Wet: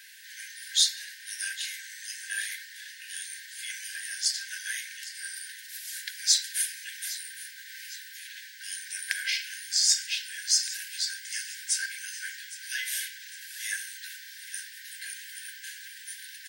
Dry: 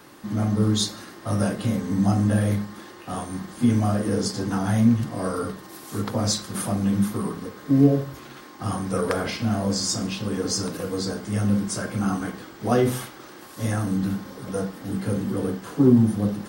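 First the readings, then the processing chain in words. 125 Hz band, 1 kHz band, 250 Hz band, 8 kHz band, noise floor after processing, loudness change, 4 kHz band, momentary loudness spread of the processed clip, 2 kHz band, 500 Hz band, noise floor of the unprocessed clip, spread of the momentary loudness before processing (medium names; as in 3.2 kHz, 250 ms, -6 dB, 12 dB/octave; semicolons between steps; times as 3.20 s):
under -40 dB, under -40 dB, under -40 dB, +4.0 dB, -47 dBFS, -6.0 dB, +4.0 dB, 17 LU, +3.0 dB, under -40 dB, -44 dBFS, 13 LU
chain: brick-wall FIR high-pass 1.5 kHz; on a send: feedback delay 809 ms, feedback 46%, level -16 dB; on the sum: trim +4 dB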